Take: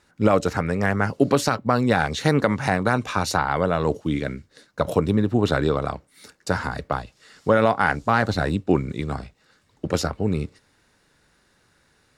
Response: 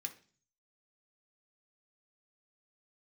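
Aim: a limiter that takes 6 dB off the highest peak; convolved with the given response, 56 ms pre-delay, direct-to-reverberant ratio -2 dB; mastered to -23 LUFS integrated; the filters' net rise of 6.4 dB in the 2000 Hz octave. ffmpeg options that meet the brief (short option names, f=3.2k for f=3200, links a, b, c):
-filter_complex "[0:a]equalizer=f=2k:t=o:g=9,alimiter=limit=-7dB:level=0:latency=1,asplit=2[a][b];[1:a]atrim=start_sample=2205,adelay=56[c];[b][c]afir=irnorm=-1:irlink=0,volume=4.5dB[d];[a][d]amix=inputs=2:normalize=0,volume=-3.5dB"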